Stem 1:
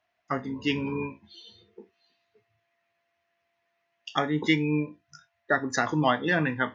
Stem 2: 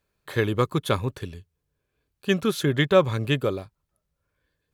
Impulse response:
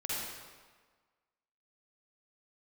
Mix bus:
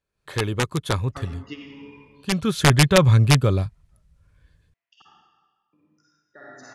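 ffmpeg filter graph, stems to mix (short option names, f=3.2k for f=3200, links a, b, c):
-filter_complex "[0:a]alimiter=limit=-16dB:level=0:latency=1:release=243,adelay=850,volume=-9dB,asplit=3[a][b][c];[a]atrim=end=5.02,asetpts=PTS-STARTPTS,afade=t=out:st=5.016:d=0.004:c=hsin[d];[b]atrim=start=5.02:end=5.73,asetpts=PTS-STARTPTS,volume=0[e];[c]atrim=start=5.73,asetpts=PTS-STARTPTS,afade=t=in:d=0.004:c=hsin[f];[d][e][f]concat=n=3:v=0:a=1,asplit=2[g][h];[h]volume=-8dB[i];[1:a]asubboost=boost=6:cutoff=160,dynaudnorm=f=120:g=3:m=9.5dB,aeval=exprs='(mod(1.68*val(0)+1,2)-1)/1.68':c=same,volume=-1dB,afade=t=in:st=2.28:d=0.54:silence=0.421697,asplit=2[j][k];[k]apad=whole_len=335157[l];[g][l]sidechaingate=range=-33dB:threshold=-48dB:ratio=16:detection=peak[m];[2:a]atrim=start_sample=2205[n];[i][n]afir=irnorm=-1:irlink=0[o];[m][j][o]amix=inputs=3:normalize=0,lowpass=f=11k:w=0.5412,lowpass=f=11k:w=1.3066"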